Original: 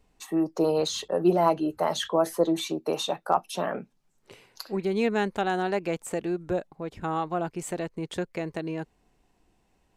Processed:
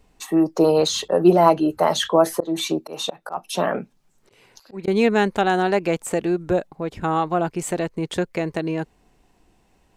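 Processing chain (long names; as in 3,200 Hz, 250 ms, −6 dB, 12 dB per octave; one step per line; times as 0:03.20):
0:02.35–0:04.88: volume swells 238 ms
level +7.5 dB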